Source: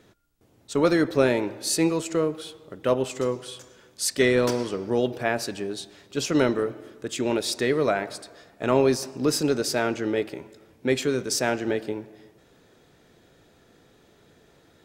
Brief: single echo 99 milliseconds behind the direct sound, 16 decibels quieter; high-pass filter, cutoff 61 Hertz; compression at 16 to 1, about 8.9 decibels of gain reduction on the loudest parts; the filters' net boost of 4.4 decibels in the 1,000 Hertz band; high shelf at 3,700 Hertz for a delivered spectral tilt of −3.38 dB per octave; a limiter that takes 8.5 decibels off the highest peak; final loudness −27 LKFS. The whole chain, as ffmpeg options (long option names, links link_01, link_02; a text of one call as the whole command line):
ffmpeg -i in.wav -af "highpass=61,equalizer=frequency=1000:width_type=o:gain=5.5,highshelf=frequency=3700:gain=4.5,acompressor=threshold=-22dB:ratio=16,alimiter=limit=-19dB:level=0:latency=1,aecho=1:1:99:0.158,volume=3.5dB" out.wav